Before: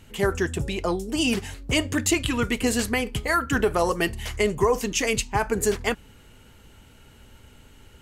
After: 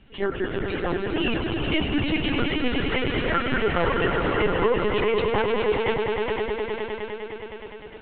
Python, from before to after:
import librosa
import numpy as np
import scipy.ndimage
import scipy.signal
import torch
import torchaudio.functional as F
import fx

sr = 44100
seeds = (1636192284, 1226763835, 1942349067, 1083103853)

y = fx.echo_swell(x, sr, ms=103, loudest=5, wet_db=-6.5)
y = fx.lpc_vocoder(y, sr, seeds[0], excitation='pitch_kept', order=16)
y = F.gain(torch.from_numpy(y), -3.0).numpy()